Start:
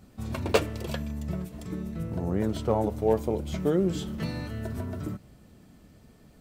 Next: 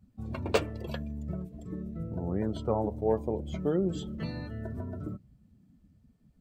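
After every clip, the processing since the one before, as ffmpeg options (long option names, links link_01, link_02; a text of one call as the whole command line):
ffmpeg -i in.wav -af "afftdn=noise_reduction=17:noise_floor=-43,volume=-3.5dB" out.wav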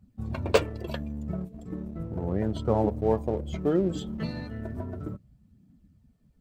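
ffmpeg -i in.wav -filter_complex "[0:a]aphaser=in_gain=1:out_gain=1:delay=4.9:decay=0.26:speed=0.35:type=triangular,asplit=2[link_01][link_02];[link_02]aeval=exprs='sgn(val(0))*max(abs(val(0))-0.00841,0)':channel_layout=same,volume=-4.5dB[link_03];[link_01][link_03]amix=inputs=2:normalize=0" out.wav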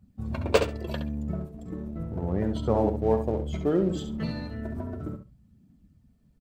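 ffmpeg -i in.wav -af "aecho=1:1:68|136:0.376|0.0601" out.wav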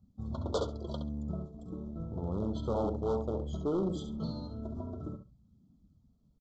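ffmpeg -i in.wav -af "aresample=16000,asoftclip=type=hard:threshold=-20.5dB,aresample=44100,asuperstop=centerf=2100:order=20:qfactor=1.2,volume=-5.5dB" out.wav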